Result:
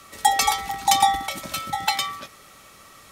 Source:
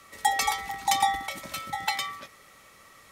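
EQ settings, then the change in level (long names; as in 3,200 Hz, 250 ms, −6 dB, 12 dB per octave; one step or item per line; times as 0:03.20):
thirty-one-band graphic EQ 500 Hz −4 dB, 1,000 Hz −3 dB, 2,000 Hz −7 dB
+7.0 dB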